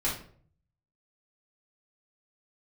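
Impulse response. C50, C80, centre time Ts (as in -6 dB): 5.0 dB, 11.0 dB, 32 ms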